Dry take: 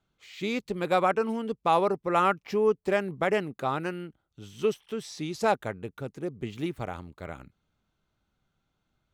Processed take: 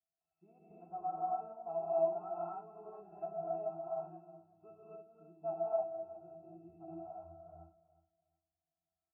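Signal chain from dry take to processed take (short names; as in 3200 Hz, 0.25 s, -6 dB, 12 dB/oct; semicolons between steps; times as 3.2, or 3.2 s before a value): vocal tract filter a; octave resonator E, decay 0.23 s; feedback echo 0.365 s, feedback 25%, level -17.5 dB; non-linear reverb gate 0.33 s rising, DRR -7.5 dB; gain +6 dB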